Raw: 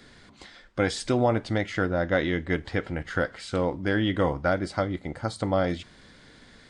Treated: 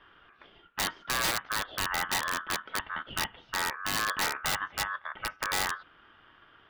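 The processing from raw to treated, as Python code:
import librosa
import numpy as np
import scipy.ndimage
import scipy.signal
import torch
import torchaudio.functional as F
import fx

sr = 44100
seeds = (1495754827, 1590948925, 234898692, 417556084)

y = scipy.signal.sosfilt(scipy.signal.butter(4, 2000.0, 'lowpass', fs=sr, output='sos'), x)
y = y * np.sin(2.0 * np.pi * 1400.0 * np.arange(len(y)) / sr)
y = (np.mod(10.0 ** (19.0 / 20.0) * y + 1.0, 2.0) - 1.0) / 10.0 ** (19.0 / 20.0)
y = F.gain(torch.from_numpy(y), -2.0).numpy()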